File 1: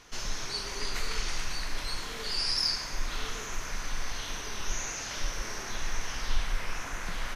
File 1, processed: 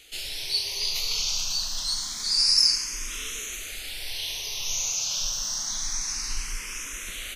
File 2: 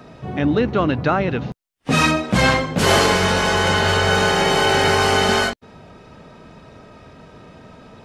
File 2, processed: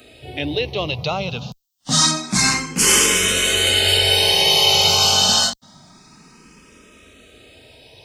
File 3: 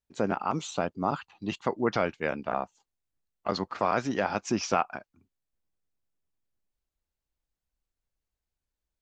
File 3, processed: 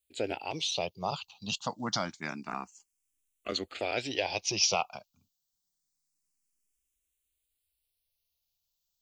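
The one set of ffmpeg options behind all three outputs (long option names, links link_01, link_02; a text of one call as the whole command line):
ffmpeg -i in.wav -filter_complex "[0:a]aexciter=amount=6.7:drive=1.8:freq=2400,asplit=2[link_01][link_02];[link_02]afreqshift=0.27[link_03];[link_01][link_03]amix=inputs=2:normalize=1,volume=-3dB" out.wav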